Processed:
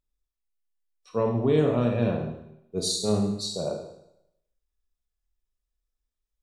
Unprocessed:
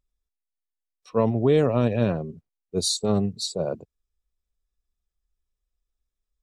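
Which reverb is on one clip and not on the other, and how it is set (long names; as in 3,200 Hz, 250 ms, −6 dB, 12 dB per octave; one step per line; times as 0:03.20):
four-comb reverb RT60 0.79 s, combs from 26 ms, DRR 2 dB
level −4.5 dB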